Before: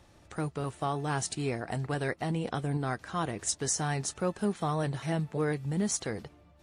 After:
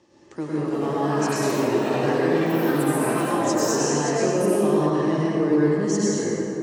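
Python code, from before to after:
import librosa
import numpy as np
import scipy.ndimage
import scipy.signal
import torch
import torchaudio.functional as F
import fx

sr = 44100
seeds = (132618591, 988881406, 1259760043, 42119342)

y = fx.cabinet(x, sr, low_hz=210.0, low_slope=12, high_hz=6800.0, hz=(340.0, 710.0, 1400.0, 2300.0, 3700.0), db=(9, -9, -10, -6, -8))
y = fx.rev_plate(y, sr, seeds[0], rt60_s=3.1, hf_ratio=0.45, predelay_ms=90, drr_db=-8.0)
y = fx.echo_pitch(y, sr, ms=475, semitones=7, count=3, db_per_echo=-6.0)
y = y * 10.0 ** (2.0 / 20.0)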